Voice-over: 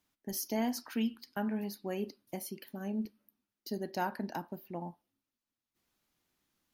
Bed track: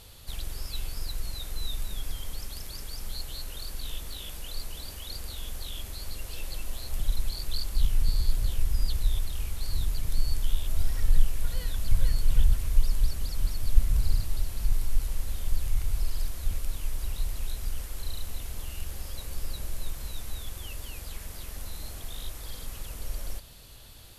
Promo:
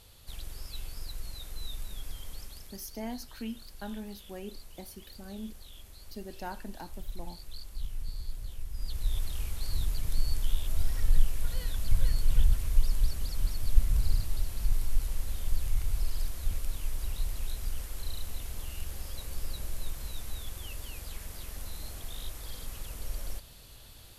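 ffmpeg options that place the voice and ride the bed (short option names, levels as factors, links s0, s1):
-filter_complex "[0:a]adelay=2450,volume=0.531[s0];[1:a]volume=1.68,afade=t=out:st=2.39:d=0.46:silence=0.473151,afade=t=in:st=8.72:d=0.55:silence=0.298538[s1];[s0][s1]amix=inputs=2:normalize=0"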